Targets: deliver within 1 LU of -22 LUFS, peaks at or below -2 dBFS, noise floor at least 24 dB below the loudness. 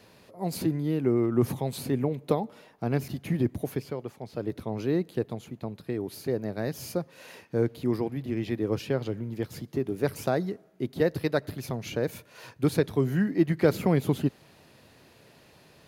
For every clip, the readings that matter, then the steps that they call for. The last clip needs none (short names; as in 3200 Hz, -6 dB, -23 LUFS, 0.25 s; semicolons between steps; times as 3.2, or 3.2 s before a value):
loudness -29.5 LUFS; peak -8.0 dBFS; loudness target -22.0 LUFS
-> gain +7.5 dB; limiter -2 dBFS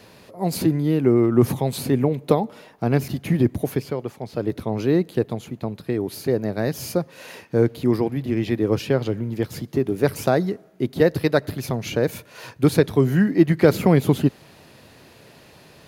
loudness -22.0 LUFS; peak -2.0 dBFS; noise floor -50 dBFS